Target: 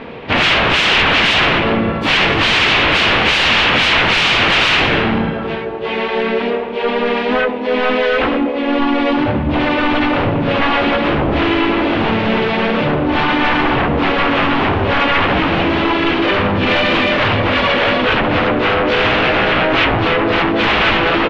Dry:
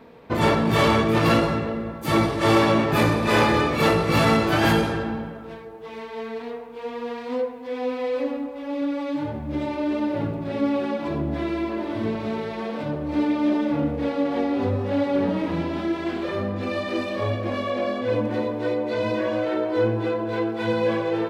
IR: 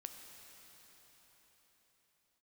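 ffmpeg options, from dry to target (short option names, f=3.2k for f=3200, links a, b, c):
-filter_complex "[0:a]aeval=exprs='0.501*sin(PI/2*8.91*val(0)/0.501)':c=same,lowpass=f=2.9k:t=q:w=2.6,asplit=3[a][b][c];[b]asetrate=37084,aresample=44100,atempo=1.18921,volume=-7dB[d];[c]asetrate=55563,aresample=44100,atempo=0.793701,volume=-11dB[e];[a][d][e]amix=inputs=3:normalize=0,volume=-7.5dB"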